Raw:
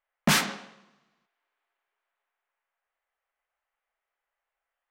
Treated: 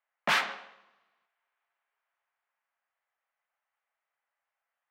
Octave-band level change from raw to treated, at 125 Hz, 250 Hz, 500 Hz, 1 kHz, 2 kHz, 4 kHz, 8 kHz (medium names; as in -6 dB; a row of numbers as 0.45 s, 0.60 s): -19.0 dB, -17.0 dB, -3.5 dB, -0.5 dB, -0.5 dB, -5.0 dB, -14.0 dB